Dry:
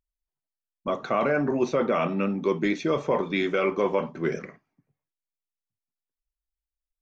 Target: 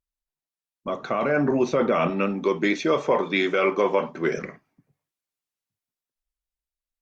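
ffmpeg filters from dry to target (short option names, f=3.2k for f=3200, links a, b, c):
-filter_complex "[0:a]asettb=1/sr,asplit=3[a][b][c];[a]atrim=end=2.104[d];[b]atrim=start=2.1:end=4.38,asetpts=PTS-STARTPTS,afade=t=in:d=0.004:c=qsin,afade=t=out:st=2.276:d=0.004:c=qsin,highpass=f=340:p=1[e];[c]atrim=start=4.376[f];[d][e]acrossfade=d=0.004:c1=hsin:c2=qsin[g];[g][f]acrossfade=d=0.004:c1=qsin:c2=hsin,alimiter=limit=-16dB:level=0:latency=1:release=142,dynaudnorm=f=220:g=11:m=9dB,volume=-3.5dB" -ar 48000 -c:a libopus -b:a 64k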